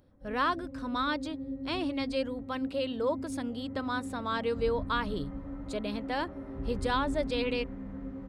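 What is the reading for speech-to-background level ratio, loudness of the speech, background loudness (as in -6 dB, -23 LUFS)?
7.0 dB, -33.5 LUFS, -40.5 LUFS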